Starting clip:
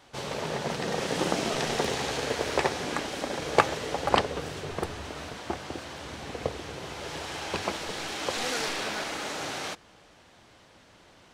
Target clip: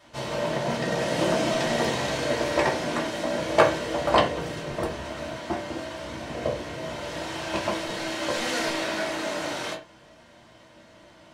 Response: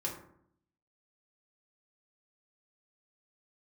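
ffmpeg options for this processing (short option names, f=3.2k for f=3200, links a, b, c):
-filter_complex "[1:a]atrim=start_sample=2205,afade=t=out:st=0.24:d=0.01,atrim=end_sample=11025,asetrate=79380,aresample=44100[a];[0:a][a]afir=irnorm=-1:irlink=0,volume=5dB"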